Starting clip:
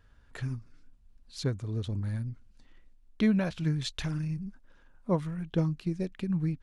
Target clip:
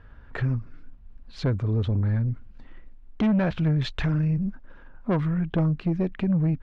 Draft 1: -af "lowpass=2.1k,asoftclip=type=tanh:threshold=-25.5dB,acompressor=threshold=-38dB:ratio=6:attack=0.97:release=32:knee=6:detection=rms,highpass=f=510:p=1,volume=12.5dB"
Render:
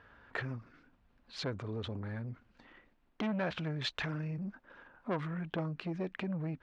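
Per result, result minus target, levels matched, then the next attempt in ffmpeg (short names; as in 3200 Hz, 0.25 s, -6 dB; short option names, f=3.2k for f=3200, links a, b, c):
compressor: peak gain reduction +5.5 dB; 500 Hz band +4.5 dB
-af "lowpass=2.1k,asoftclip=type=tanh:threshold=-25.5dB,acompressor=threshold=-31.5dB:ratio=6:attack=0.97:release=32:knee=6:detection=rms,highpass=f=510:p=1,volume=12.5dB"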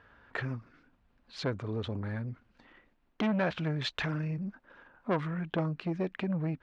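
500 Hz band +5.0 dB
-af "lowpass=2.1k,asoftclip=type=tanh:threshold=-25.5dB,acompressor=threshold=-31.5dB:ratio=6:attack=0.97:release=32:knee=6:detection=rms,volume=12.5dB"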